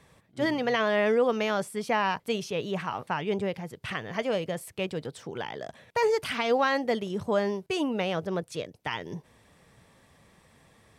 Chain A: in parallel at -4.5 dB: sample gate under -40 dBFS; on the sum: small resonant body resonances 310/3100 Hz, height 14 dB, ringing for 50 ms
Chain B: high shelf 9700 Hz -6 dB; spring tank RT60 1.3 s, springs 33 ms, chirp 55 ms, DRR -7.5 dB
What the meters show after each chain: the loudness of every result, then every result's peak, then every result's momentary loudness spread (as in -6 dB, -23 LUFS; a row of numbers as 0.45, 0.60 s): -21.5, -20.5 LUFS; -3.5, -4.0 dBFS; 12, 12 LU